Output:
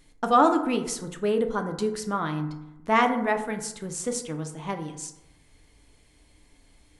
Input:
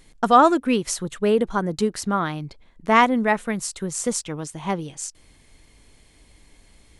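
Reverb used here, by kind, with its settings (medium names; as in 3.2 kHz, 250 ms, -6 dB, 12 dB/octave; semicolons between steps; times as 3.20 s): FDN reverb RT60 0.92 s, low-frequency decay 1×, high-frequency decay 0.4×, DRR 5 dB; trim -6 dB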